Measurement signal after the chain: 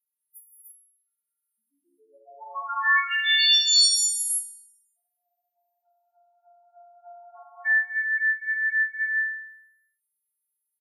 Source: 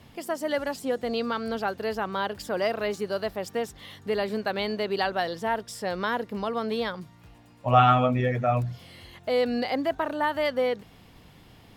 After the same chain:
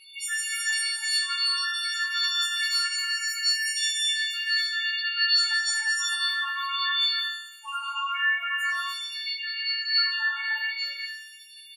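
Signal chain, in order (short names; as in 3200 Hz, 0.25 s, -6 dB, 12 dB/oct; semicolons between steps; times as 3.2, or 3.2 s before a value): frequency quantiser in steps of 4 st; HPF 1300 Hz 24 dB/oct; reverb removal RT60 1 s; compressor 6:1, threshold -35 dBFS; loudest bins only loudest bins 4; non-linear reverb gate 0.39 s rising, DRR -4 dB; downsampling 32000 Hz; on a send: flutter echo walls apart 3.6 m, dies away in 0.8 s; on the sum: gain +6.5 dB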